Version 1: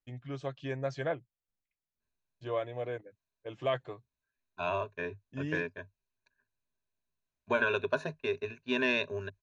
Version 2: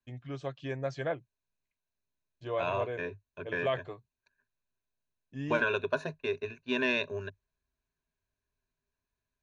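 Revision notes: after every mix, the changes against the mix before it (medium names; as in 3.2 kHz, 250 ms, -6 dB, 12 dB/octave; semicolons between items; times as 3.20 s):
second voice: entry -2.00 s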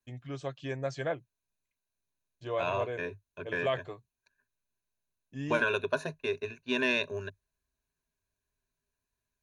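master: remove distance through air 84 m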